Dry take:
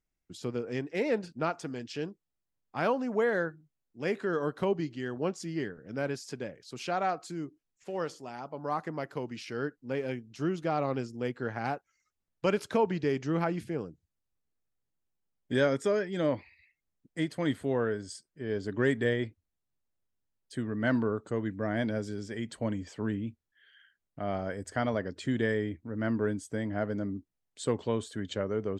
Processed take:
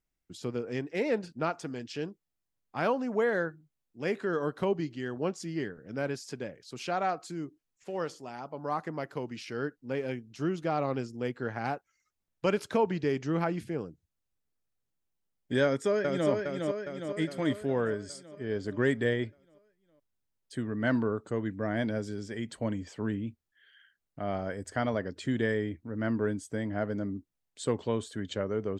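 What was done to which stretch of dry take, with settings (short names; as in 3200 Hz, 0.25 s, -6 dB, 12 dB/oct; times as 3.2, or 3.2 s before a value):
15.63–16.3 echo throw 0.41 s, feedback 60%, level -4 dB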